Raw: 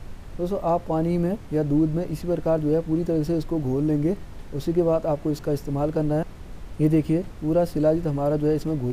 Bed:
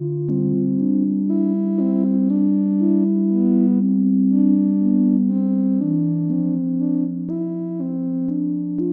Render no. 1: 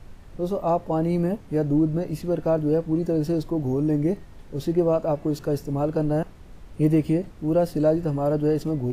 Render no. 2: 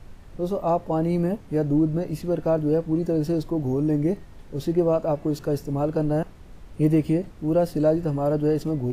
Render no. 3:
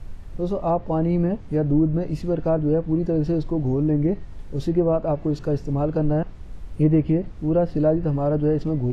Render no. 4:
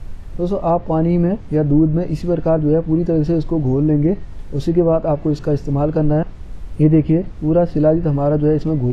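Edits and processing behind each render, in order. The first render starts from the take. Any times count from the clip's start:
noise print and reduce 6 dB
no audible change
low-pass that closes with the level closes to 2.2 kHz, closed at -17 dBFS; bass shelf 110 Hz +10 dB
trim +5.5 dB

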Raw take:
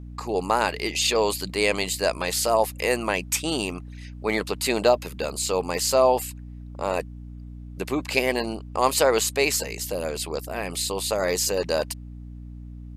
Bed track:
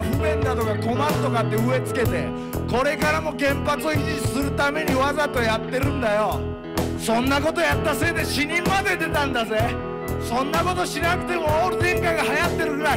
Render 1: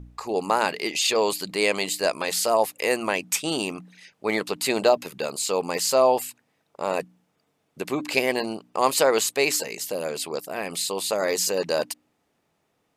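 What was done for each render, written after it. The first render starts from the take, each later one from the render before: de-hum 60 Hz, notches 5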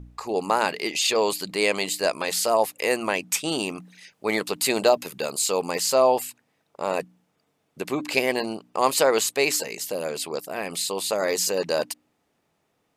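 3.75–5.71 s: treble shelf 6.2 kHz +6 dB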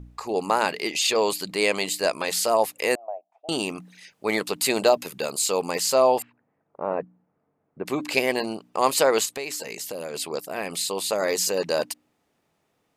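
2.95–3.49 s: Butterworth band-pass 680 Hz, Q 4.7; 6.22–7.86 s: Bessel low-pass 1.2 kHz, order 4; 9.25–10.14 s: compression 4:1, threshold -29 dBFS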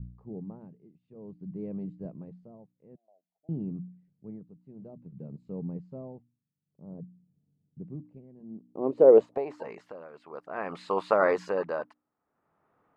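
low-pass sweep 160 Hz -> 1.3 kHz, 8.35–9.78 s; tremolo 0.54 Hz, depth 85%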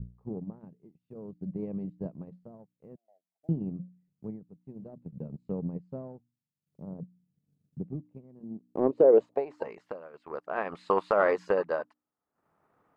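transient shaper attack +7 dB, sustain -7 dB; peak limiter -11.5 dBFS, peak gain reduction 10 dB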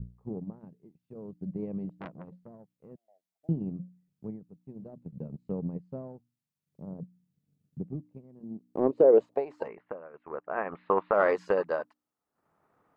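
1.89–2.91 s: transformer saturation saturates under 1.3 kHz; 9.68–11.14 s: low-pass 2.3 kHz 24 dB/octave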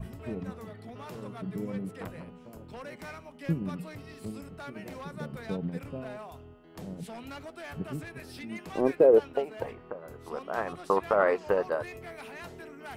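add bed track -22.5 dB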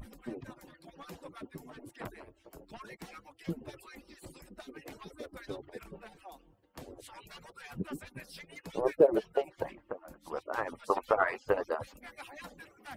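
harmonic-percussive separation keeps percussive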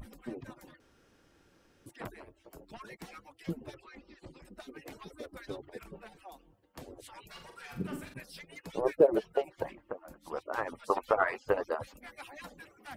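0.80–1.86 s: room tone; 3.74–4.45 s: distance through air 150 m; 7.31–8.14 s: flutter echo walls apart 7.5 m, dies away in 0.43 s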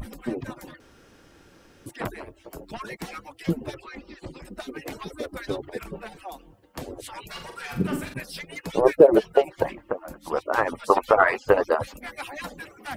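trim +11.5 dB; peak limiter -3 dBFS, peak gain reduction 3 dB

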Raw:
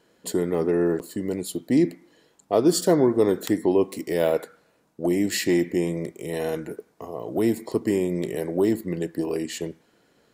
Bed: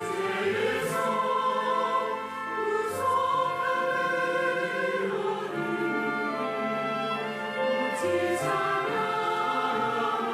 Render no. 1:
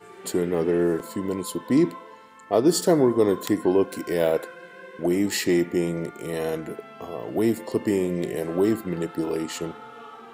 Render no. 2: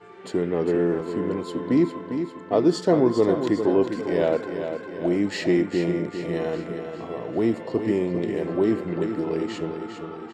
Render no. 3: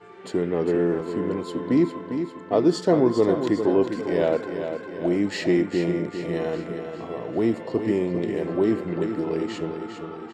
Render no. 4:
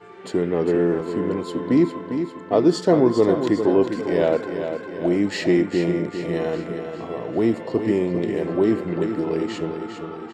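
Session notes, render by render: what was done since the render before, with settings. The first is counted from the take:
add bed -15 dB
distance through air 140 m; feedback delay 402 ms, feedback 55%, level -8 dB
no audible change
trim +2.5 dB

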